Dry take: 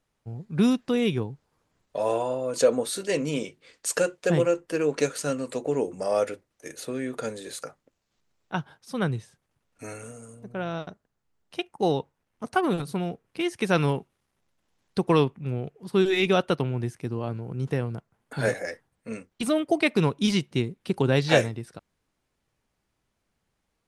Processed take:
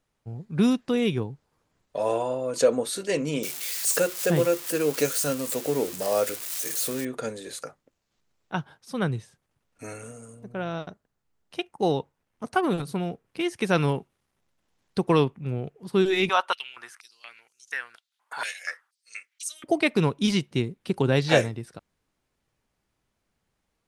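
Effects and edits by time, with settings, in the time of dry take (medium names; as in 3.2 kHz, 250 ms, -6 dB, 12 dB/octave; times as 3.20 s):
3.43–7.05 s: zero-crossing glitches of -22.5 dBFS
16.29–19.64 s: step-sequenced high-pass 4.2 Hz 980–6300 Hz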